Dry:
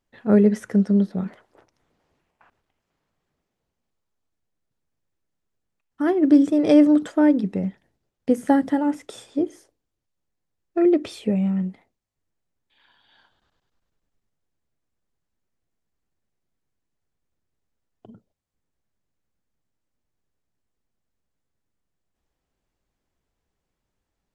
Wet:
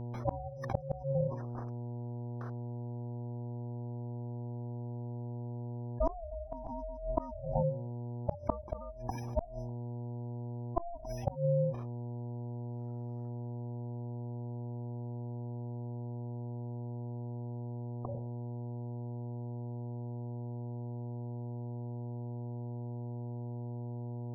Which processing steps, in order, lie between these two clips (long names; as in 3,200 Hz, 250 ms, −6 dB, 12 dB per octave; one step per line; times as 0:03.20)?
samples sorted by size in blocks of 8 samples
mains-hum notches 50/100/150/200/250/300 Hz
noise gate with hold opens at −44 dBFS
notch filter 510 Hz, Q 12
gate on every frequency bin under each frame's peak −15 dB strong
Savitzky-Golay smoothing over 65 samples
low-shelf EQ 310 Hz −10.5 dB
ring modulation 340 Hz
hum with harmonics 120 Hz, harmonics 8, −57 dBFS −8 dB per octave
gate with flip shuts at −22 dBFS, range −34 dB
envelope flattener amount 50%
level +3.5 dB